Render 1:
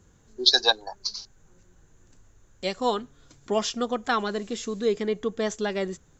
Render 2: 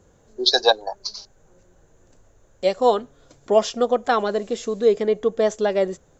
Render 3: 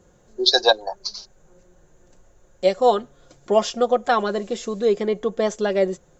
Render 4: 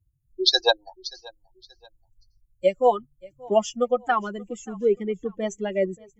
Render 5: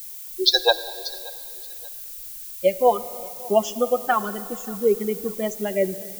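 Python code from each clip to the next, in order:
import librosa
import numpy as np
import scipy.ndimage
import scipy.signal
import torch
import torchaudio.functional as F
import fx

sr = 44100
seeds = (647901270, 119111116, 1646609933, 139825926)

y1 = fx.peak_eq(x, sr, hz=580.0, db=12.0, octaves=1.1)
y2 = y1 + 0.4 * np.pad(y1, (int(5.6 * sr / 1000.0), 0))[:len(y1)]
y3 = fx.bin_expand(y2, sr, power=2.0)
y3 = fx.echo_feedback(y3, sr, ms=580, feedback_pct=36, wet_db=-23.5)
y4 = fx.dmg_noise_colour(y3, sr, seeds[0], colour='violet', level_db=-39.0)
y4 = fx.rev_plate(y4, sr, seeds[1], rt60_s=2.6, hf_ratio=1.0, predelay_ms=0, drr_db=14.0)
y4 = y4 * librosa.db_to_amplitude(1.5)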